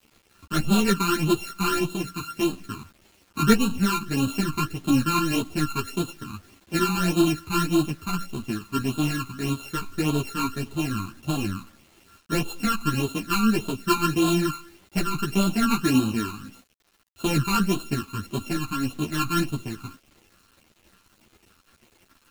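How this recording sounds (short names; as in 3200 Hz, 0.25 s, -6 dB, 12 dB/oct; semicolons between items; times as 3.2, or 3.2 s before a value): a buzz of ramps at a fixed pitch in blocks of 32 samples; phasing stages 12, 1.7 Hz, lowest notch 560–1900 Hz; a quantiser's noise floor 10-bit, dither none; a shimmering, thickened sound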